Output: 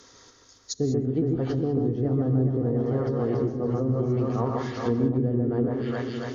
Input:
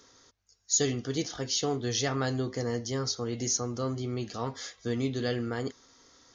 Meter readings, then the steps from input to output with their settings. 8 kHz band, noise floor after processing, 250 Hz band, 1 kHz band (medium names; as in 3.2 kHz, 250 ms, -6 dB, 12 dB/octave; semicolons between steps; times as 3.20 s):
under -10 dB, -56 dBFS, +8.5 dB, +3.0 dB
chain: echo whose repeats swap between lows and highs 139 ms, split 2.4 kHz, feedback 83%, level -3 dB; low-pass that closes with the level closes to 360 Hz, closed at -24 dBFS; gated-style reverb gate 220 ms rising, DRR 12 dB; trim +6 dB